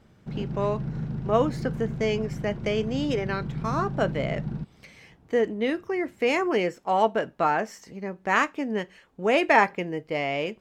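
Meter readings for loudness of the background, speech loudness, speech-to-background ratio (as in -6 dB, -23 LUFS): -33.5 LUFS, -26.5 LUFS, 7.0 dB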